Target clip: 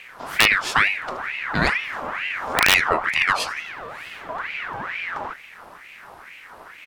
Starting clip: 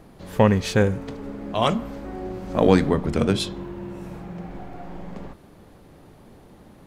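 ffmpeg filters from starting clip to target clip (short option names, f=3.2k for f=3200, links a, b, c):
-filter_complex "[0:a]asettb=1/sr,asplit=3[a][b][c];[a]atrim=end=3.604[d];[b]atrim=start=3.6:end=4.29,asetpts=PTS-STARTPTS,afade=t=in:d=0.004:c=qsin,afade=t=out:st=0.686:d=0.004:c=qsin,highpass=f=480:p=1[e];[c]atrim=start=4.286[f];[d][e]acrossfade=d=0.004:c1=hsin:c2=qsin[g];[g][f]acrossfade=d=0.004:c1=qsin:c2=hsin,aecho=1:1:87|174|261:0.075|0.0337|0.0152,aeval=exprs='(mod(1.78*val(0)+1,2)-1)/1.78':c=same,asplit=2[h][i];[i]acompressor=threshold=-30dB:ratio=6,volume=2dB[j];[h][j]amix=inputs=2:normalize=0,aeval=exprs='val(0)*sin(2*PI*1600*n/s+1600*0.5/2.2*sin(2*PI*2.2*n/s))':c=same,volume=1dB"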